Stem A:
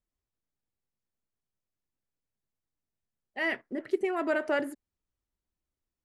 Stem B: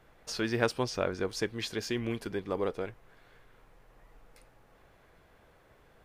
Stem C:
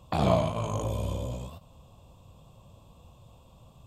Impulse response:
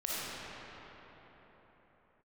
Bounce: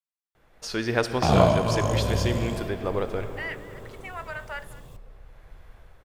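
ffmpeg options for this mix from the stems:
-filter_complex "[0:a]highpass=frequency=800:width=0.5412,highpass=frequency=800:width=1.3066,alimiter=level_in=1dB:limit=-24dB:level=0:latency=1,volume=-1dB,volume=-8.5dB,asplit=3[link_01][link_02][link_03];[link_02]volume=-18dB[link_04];[1:a]asubboost=boost=5.5:cutoff=95,adelay=350,volume=-4.5dB,asplit=2[link_05][link_06];[link_06]volume=-13dB[link_07];[2:a]acrusher=bits=10:mix=0:aa=0.000001,adelay=1100,volume=-3dB,asplit=2[link_08][link_09];[link_09]volume=-18dB[link_10];[link_03]apad=whole_len=281853[link_11];[link_05][link_11]sidechaincompress=threshold=-58dB:ratio=8:attack=16:release=715[link_12];[3:a]atrim=start_sample=2205[link_13];[link_07][link_10]amix=inputs=2:normalize=0[link_14];[link_14][link_13]afir=irnorm=-1:irlink=0[link_15];[link_04]aecho=0:1:209:1[link_16];[link_01][link_12][link_08][link_15][link_16]amix=inputs=5:normalize=0,dynaudnorm=framelen=110:gausssize=11:maxgain=8dB"

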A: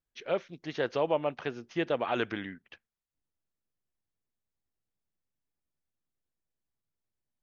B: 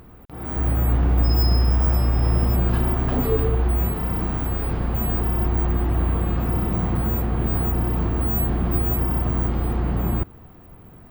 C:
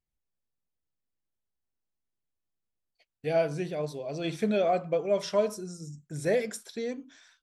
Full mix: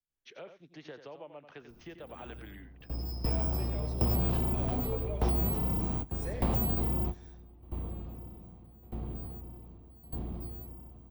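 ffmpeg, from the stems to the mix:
ffmpeg -i stem1.wav -i stem2.wav -i stem3.wav -filter_complex "[0:a]acompressor=threshold=-39dB:ratio=4,adelay=100,volume=-6.5dB,asplit=2[link_01][link_02];[link_02]volume=-10dB[link_03];[1:a]equalizer=frequency=1600:width=1.3:gain=-12.5,aeval=exprs='0.398*sin(PI/2*1.58*val(0)/0.398)':channel_layout=same,aeval=exprs='val(0)*pow(10,-24*if(lt(mod(0.83*n/s,1),2*abs(0.83)/1000),1-mod(0.83*n/s,1)/(2*abs(0.83)/1000),(mod(0.83*n/s,1)-2*abs(0.83)/1000)/(1-2*abs(0.83)/1000))/20)':channel_layout=same,adelay=1600,volume=2.5dB,asplit=2[link_04][link_05];[link_05]volume=-22dB[link_06];[2:a]acompressor=threshold=-27dB:ratio=6,volume=-10.5dB,asplit=3[link_07][link_08][link_09];[link_08]volume=-8.5dB[link_10];[link_09]apad=whole_len=560420[link_11];[link_04][link_11]sidechaingate=range=-39dB:threshold=-59dB:ratio=16:detection=peak[link_12];[link_03][link_06][link_10]amix=inputs=3:normalize=0,aecho=0:1:90:1[link_13];[link_01][link_12][link_07][link_13]amix=inputs=4:normalize=0,acrossover=split=100|260|520[link_14][link_15][link_16][link_17];[link_14]acompressor=threshold=-35dB:ratio=4[link_18];[link_15]acompressor=threshold=-34dB:ratio=4[link_19];[link_16]acompressor=threshold=-44dB:ratio=4[link_20];[link_17]acompressor=threshold=-34dB:ratio=4[link_21];[link_18][link_19][link_20][link_21]amix=inputs=4:normalize=0" out.wav

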